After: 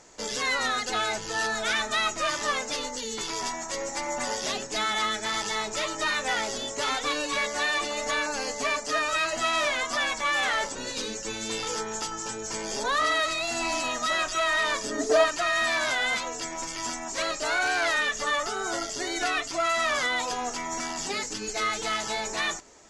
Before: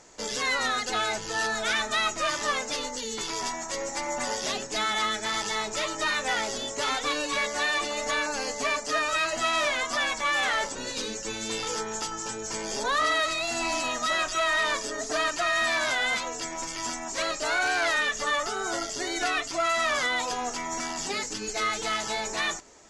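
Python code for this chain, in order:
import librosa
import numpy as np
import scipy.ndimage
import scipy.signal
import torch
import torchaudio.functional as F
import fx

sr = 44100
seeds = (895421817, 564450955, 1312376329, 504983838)

y = fx.peak_eq(x, sr, hz=fx.line((14.81, 130.0), (15.24, 750.0)), db=15.0, octaves=0.75, at=(14.81, 15.24), fade=0.02)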